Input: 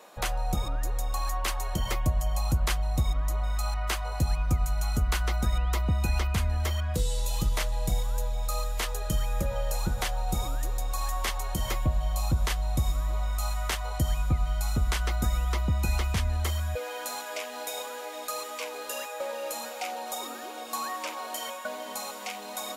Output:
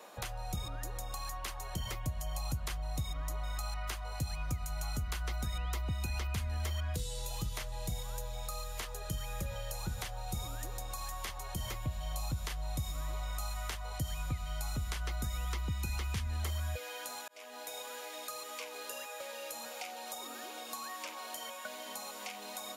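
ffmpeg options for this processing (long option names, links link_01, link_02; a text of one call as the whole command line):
ffmpeg -i in.wav -filter_complex "[0:a]asettb=1/sr,asplit=3[link_01][link_02][link_03];[link_01]atrim=end=15.474[link_04];[link_02]atrim=start=15.47:end=16.44,asetpts=PTS-STARTPTS,afade=type=in:duration=0.004:curve=qsin,afade=type=out:start_time=0.966:duration=0.004:curve=qsin,equalizer=frequency=650:width=6.8:gain=-13[link_05];[link_03]atrim=start=16.436[link_06];[link_04][link_05]acrossfade=duration=0.004:curve1=hsin:curve2=qsin[link_07];[link_07][link_06]acrossfade=duration=0.004:curve1=qsin:curve2=hsin,asplit=2[link_08][link_09];[link_08]atrim=end=17.28,asetpts=PTS-STARTPTS,afade=type=out:start_time=17.276:duration=0.004:curve=hsin[link_10];[link_09]atrim=start=17.28,asetpts=PTS-STARTPTS,afade=type=in:duration=0.62[link_11];[link_10][link_11]concat=n=2:v=0:a=1,highpass=76,bandreject=frequency=7900:width=27,acrossover=split=130|1800[link_12][link_13][link_14];[link_12]acompressor=threshold=-33dB:ratio=4[link_15];[link_13]acompressor=threshold=-45dB:ratio=4[link_16];[link_14]acompressor=threshold=-42dB:ratio=4[link_17];[link_15][link_16][link_17]amix=inputs=3:normalize=0,volume=-1dB" out.wav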